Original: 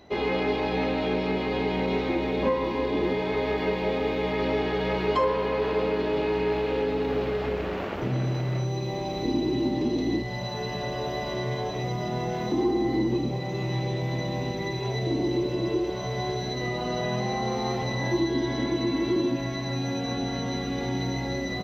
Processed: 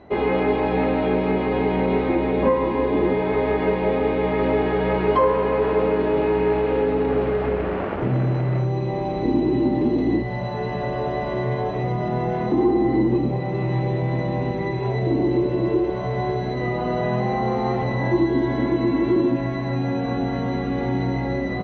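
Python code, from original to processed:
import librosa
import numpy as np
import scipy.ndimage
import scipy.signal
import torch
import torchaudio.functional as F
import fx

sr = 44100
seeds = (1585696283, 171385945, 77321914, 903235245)

y = scipy.signal.sosfilt(scipy.signal.butter(2, 1900.0, 'lowpass', fs=sr, output='sos'), x)
y = F.gain(torch.from_numpy(y), 6.0).numpy()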